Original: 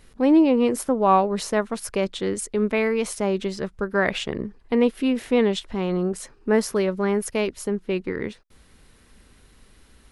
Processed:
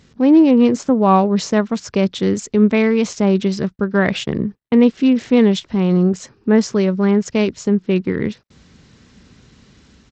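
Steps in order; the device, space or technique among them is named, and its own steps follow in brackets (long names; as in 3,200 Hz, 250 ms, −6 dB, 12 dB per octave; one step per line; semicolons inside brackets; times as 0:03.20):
bass and treble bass +14 dB, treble +4 dB
0:03.63–0:04.88: noise gate −26 dBFS, range −37 dB
Bluetooth headset (high-pass filter 140 Hz 12 dB per octave; automatic gain control gain up to 3 dB; downsampling to 16,000 Hz; level +1 dB; SBC 64 kbit/s 32,000 Hz)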